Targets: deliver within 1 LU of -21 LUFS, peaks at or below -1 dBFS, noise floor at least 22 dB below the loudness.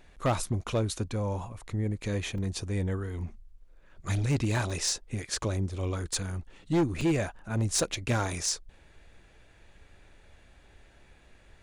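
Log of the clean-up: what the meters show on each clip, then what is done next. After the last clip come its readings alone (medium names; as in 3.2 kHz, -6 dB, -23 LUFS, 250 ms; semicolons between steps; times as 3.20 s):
clipped samples 0.6%; clipping level -20.5 dBFS; dropouts 3; longest dropout 2.7 ms; loudness -31.0 LUFS; peak level -20.5 dBFS; loudness target -21.0 LUFS
-> clip repair -20.5 dBFS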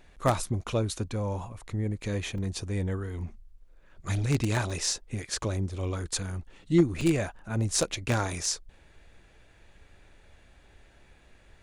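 clipped samples 0.0%; dropouts 3; longest dropout 2.7 ms
-> interpolate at 2.38/4.70/7.01 s, 2.7 ms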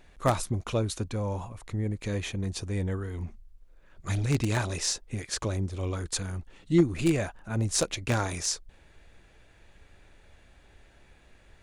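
dropouts 0; loudness -30.0 LUFS; peak level -11.5 dBFS; loudness target -21.0 LUFS
-> trim +9 dB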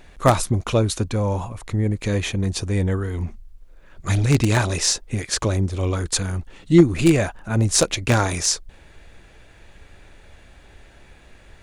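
loudness -21.0 LUFS; peak level -2.5 dBFS; noise floor -49 dBFS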